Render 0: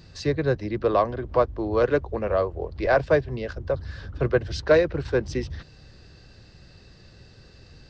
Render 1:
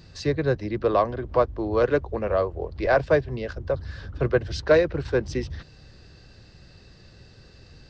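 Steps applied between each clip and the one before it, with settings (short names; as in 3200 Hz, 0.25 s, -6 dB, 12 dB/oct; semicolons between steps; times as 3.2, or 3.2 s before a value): nothing audible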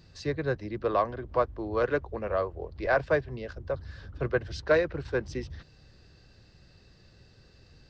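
dynamic EQ 1500 Hz, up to +5 dB, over -33 dBFS, Q 0.77; gain -7 dB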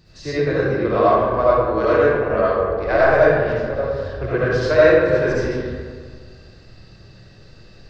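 digital reverb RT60 1.8 s, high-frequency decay 0.5×, pre-delay 35 ms, DRR -10 dB; gain +1.5 dB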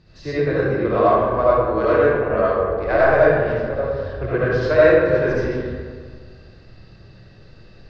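air absorption 130 m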